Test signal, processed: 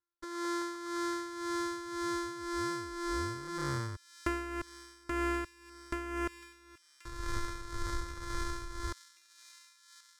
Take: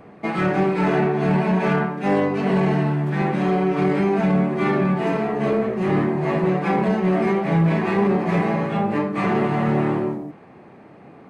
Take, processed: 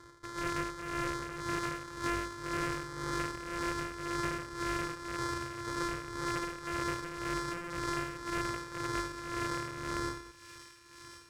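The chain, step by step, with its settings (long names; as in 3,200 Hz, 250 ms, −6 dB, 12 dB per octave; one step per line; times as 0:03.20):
samples sorted by size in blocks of 128 samples
parametric band 390 Hz −9.5 dB 2.1 octaves
phaser with its sweep stopped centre 720 Hz, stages 6
wrap-around overflow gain 12 dB
downward compressor, threshold −28 dBFS
amplitude tremolo 1.9 Hz, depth 67%
high-frequency loss of the air 74 metres
delay with a high-pass on its return 1,081 ms, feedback 59%, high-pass 2,900 Hz, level −9 dB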